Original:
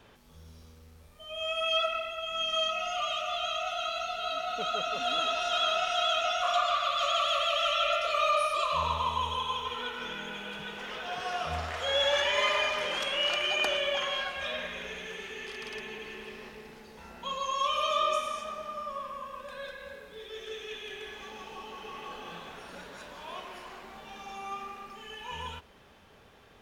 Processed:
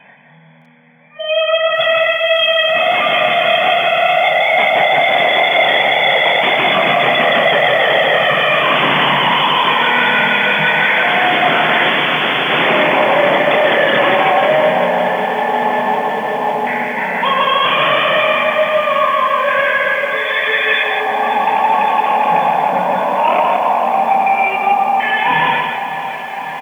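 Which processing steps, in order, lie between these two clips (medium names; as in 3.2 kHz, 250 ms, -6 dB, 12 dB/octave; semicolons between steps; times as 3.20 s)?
LFO low-pass square 0.12 Hz 860–2300 Hz; spectral noise reduction 17 dB; in parallel at -2 dB: compression 10:1, threshold -41 dBFS, peak gain reduction 22 dB; on the sum: static phaser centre 1.9 kHz, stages 8; sine folder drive 19 dB, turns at -14.5 dBFS; doubling 26 ms -7.5 dB; FFT band-pass 120–3500 Hz; on a send: feedback delay 170 ms, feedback 22%, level -4.5 dB; on the sum: bit-crushed delay 555 ms, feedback 80%, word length 7-bit, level -12 dB; trim +3 dB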